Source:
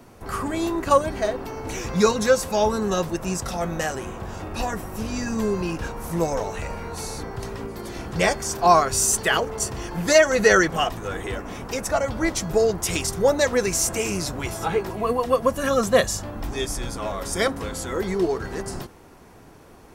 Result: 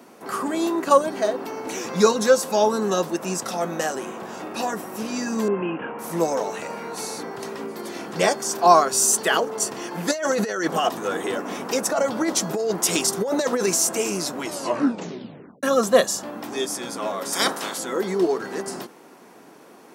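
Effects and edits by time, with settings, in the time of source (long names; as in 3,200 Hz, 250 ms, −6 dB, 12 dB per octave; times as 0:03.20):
0:05.48–0:05.99: Butterworth low-pass 3,100 Hz 96 dB per octave
0:10.11–0:13.75: compressor whose output falls as the input rises −23 dBFS
0:14.40: tape stop 1.23 s
0:17.32–0:17.77: ceiling on every frequency bin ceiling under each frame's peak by 22 dB
whole clip: dynamic equaliser 2,200 Hz, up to −6 dB, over −40 dBFS, Q 2; high-pass filter 200 Hz 24 dB per octave; level +2 dB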